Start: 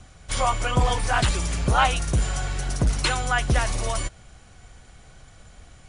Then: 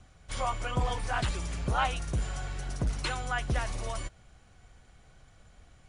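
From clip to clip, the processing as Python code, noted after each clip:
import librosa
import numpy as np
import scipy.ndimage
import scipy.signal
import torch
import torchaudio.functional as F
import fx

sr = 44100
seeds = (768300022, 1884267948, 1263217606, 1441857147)

y = fx.high_shelf(x, sr, hz=5500.0, db=-6.0)
y = y * 10.0 ** (-8.5 / 20.0)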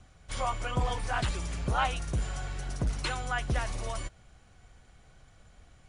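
y = x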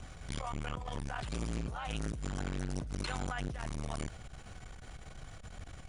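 y = fx.over_compress(x, sr, threshold_db=-38.0, ratio=-1.0)
y = fx.transformer_sat(y, sr, knee_hz=380.0)
y = y * 10.0 ** (5.0 / 20.0)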